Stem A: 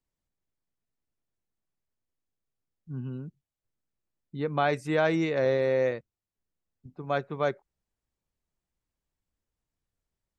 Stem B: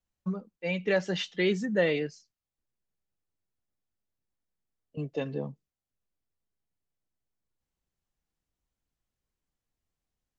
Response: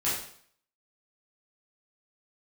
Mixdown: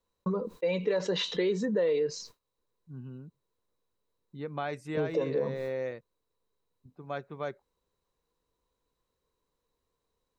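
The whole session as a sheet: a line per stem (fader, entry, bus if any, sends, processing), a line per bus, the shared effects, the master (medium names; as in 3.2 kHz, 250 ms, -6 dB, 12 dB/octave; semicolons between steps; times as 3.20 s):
-7.5 dB, 0.00 s, no send, none
-5.5 dB, 0.00 s, no send, expander -53 dBFS; small resonant body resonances 470/990/3900 Hz, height 17 dB, ringing for 25 ms; level flattener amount 50%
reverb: none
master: compression 2.5:1, threshold -29 dBFS, peak gain reduction 9.5 dB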